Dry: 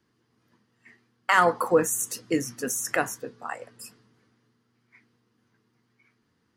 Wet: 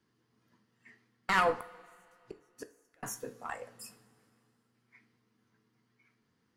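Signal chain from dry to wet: one diode to ground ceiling -19 dBFS; 1.53–3.03 flipped gate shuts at -25 dBFS, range -39 dB; two-slope reverb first 0.33 s, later 2.4 s, from -20 dB, DRR 8.5 dB; gain -5 dB

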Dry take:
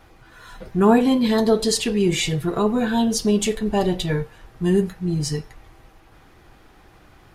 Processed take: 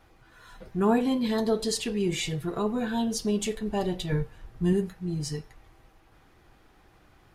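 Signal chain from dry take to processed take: 4.12–4.73 low shelf 200 Hz +9 dB; gain -8 dB

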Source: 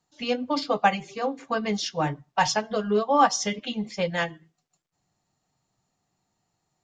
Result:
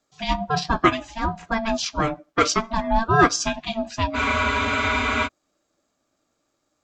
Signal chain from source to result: ring modulator 450 Hz; spectral freeze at 4.18, 1.07 s; gain +6 dB

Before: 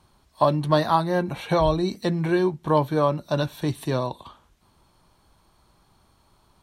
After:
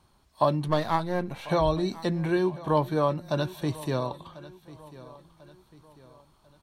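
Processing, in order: 0.68–1.5 half-wave gain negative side -7 dB; feedback echo 1.044 s, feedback 43%, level -18.5 dB; gain -3.5 dB

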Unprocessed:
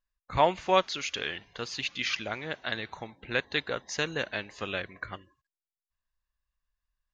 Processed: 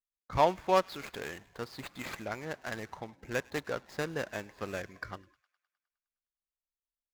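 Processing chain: median filter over 15 samples; gate with hold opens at -55 dBFS; thin delay 0.103 s, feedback 63%, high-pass 1700 Hz, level -22.5 dB; gain -1.5 dB

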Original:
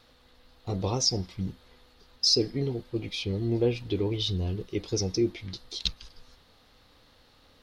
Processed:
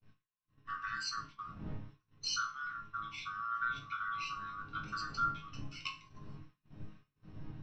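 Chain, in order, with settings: band-swap scrambler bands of 1000 Hz; wind noise 240 Hz -40 dBFS; LPF 4000 Hz 12 dB/oct; bell 500 Hz -9.5 dB 1.8 oct; resonator bank G#2 sus4, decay 0.34 s; expander -53 dBFS; gain +5.5 dB

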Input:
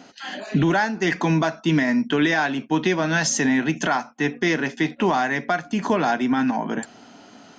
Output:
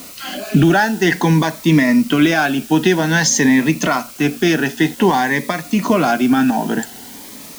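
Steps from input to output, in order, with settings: in parallel at -4 dB: requantised 6-bit, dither triangular; on the sum: cascading phaser rising 0.52 Hz; gain +3.5 dB

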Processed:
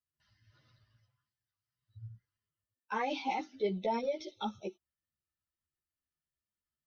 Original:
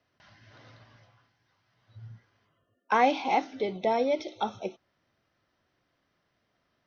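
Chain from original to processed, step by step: per-bin expansion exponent 1.5; notch 690 Hz, Q 12; in parallel at +3 dB: negative-ratio compressor -30 dBFS, ratio -0.5; on the sum: ensemble effect; gain -7.5 dB

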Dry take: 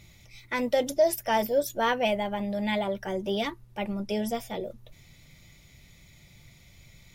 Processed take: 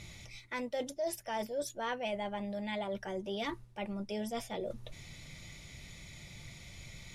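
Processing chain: reverse; compressor 4:1, threshold -42 dBFS, peak gain reduction 20 dB; reverse; LPF 11000 Hz 24 dB/oct; low shelf 320 Hz -2.5 dB; gain +5.5 dB

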